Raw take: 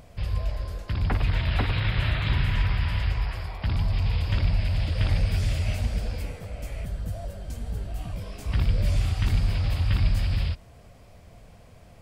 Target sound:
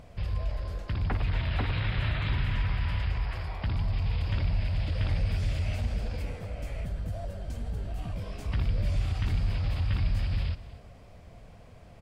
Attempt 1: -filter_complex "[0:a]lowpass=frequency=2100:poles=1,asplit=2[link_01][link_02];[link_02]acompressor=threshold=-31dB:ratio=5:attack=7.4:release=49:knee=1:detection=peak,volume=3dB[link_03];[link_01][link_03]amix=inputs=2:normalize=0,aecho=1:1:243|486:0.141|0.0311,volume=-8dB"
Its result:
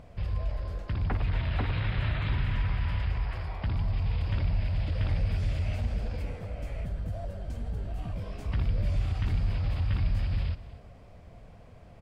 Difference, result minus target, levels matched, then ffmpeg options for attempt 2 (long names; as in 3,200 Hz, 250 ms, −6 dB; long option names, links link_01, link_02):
4,000 Hz band −3.5 dB
-filter_complex "[0:a]lowpass=frequency=4300:poles=1,asplit=2[link_01][link_02];[link_02]acompressor=threshold=-31dB:ratio=5:attack=7.4:release=49:knee=1:detection=peak,volume=3dB[link_03];[link_01][link_03]amix=inputs=2:normalize=0,aecho=1:1:243|486:0.141|0.0311,volume=-8dB"